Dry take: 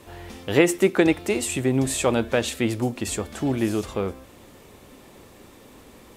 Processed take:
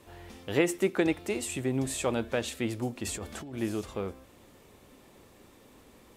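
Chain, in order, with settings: 3.04–3.58 negative-ratio compressor -30 dBFS, ratio -1; gain -8 dB

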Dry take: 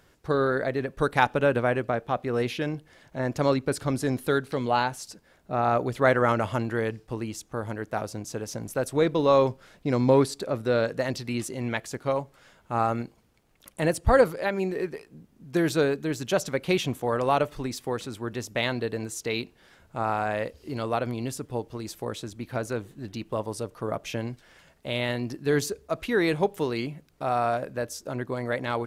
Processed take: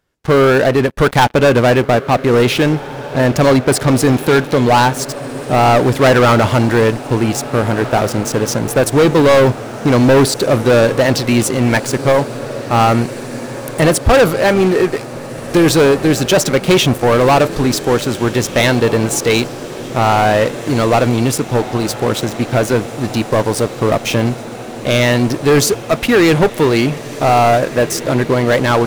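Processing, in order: sample leveller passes 5; diffused feedback echo 1.757 s, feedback 70%, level -15 dB

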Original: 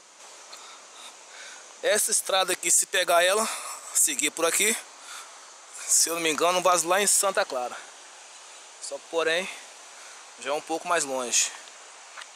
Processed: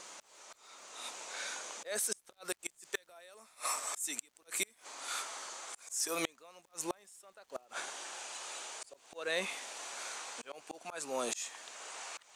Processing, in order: auto swell 0.682 s; flipped gate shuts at -21 dBFS, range -34 dB; crackle 360/s -62 dBFS; gain +1.5 dB

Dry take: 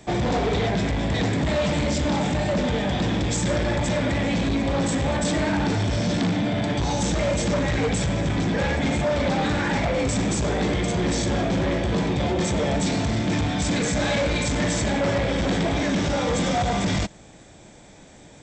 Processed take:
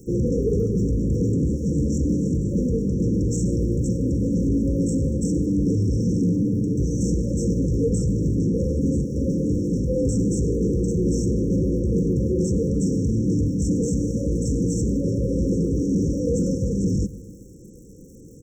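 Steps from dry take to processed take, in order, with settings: high shelf 2400 Hz -8.5 dB; crackle 240/s -46 dBFS; in parallel at -7 dB: soft clip -31 dBFS, distortion -9 dB; on the sum: brick-wall FIR band-stop 540–5400 Hz; speakerphone echo 0.14 s, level -26 dB; reverb RT60 2.0 s, pre-delay 67 ms, DRR 16.5 dB; gain +1.5 dB

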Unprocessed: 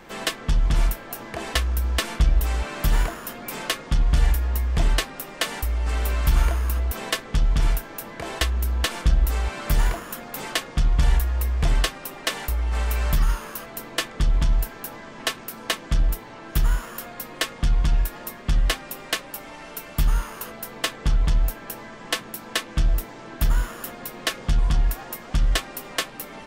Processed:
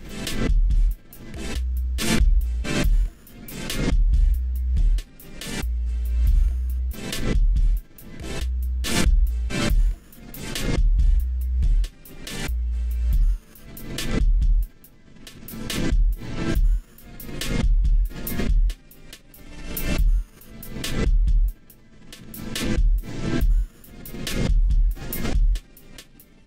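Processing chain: passive tone stack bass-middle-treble 10-0-1; backwards sustainer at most 42 dB/s; gain +5.5 dB

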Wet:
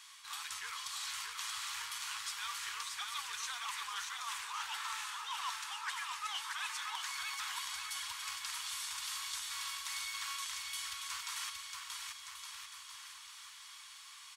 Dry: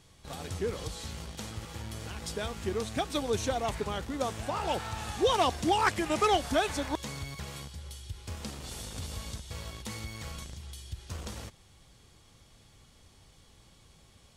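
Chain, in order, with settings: elliptic high-pass 1000 Hz, stop band 40 dB; reverse; compressor 16:1, threshold -48 dBFS, peak gain reduction 25 dB; reverse; bouncing-ball echo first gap 0.63 s, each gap 0.85×, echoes 5; gain +9 dB

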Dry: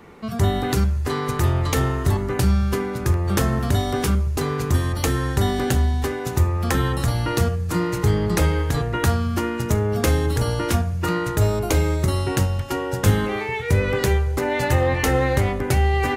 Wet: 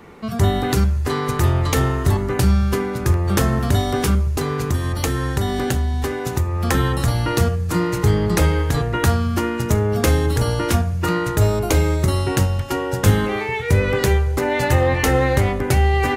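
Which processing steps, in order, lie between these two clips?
4.34–6.63 compressor 3:1, threshold -20 dBFS, peak gain reduction 6 dB; gain +2.5 dB

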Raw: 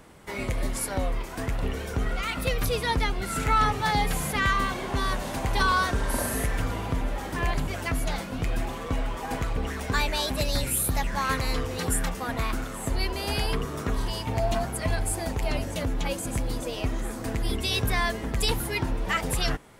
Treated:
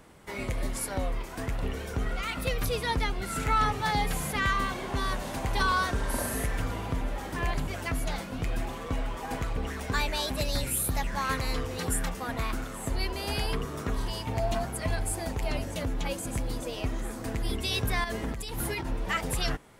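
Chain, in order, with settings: 18.04–18.87 negative-ratio compressor -30 dBFS, ratio -1; gain -3 dB

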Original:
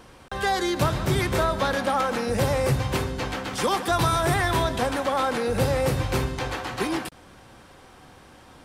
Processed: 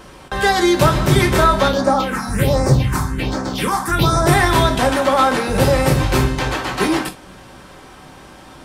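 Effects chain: 1.68–4.27 phaser stages 4, 1.3 Hz, lowest notch 440–3000 Hz; non-linear reverb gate 90 ms falling, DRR 4 dB; gain +7.5 dB

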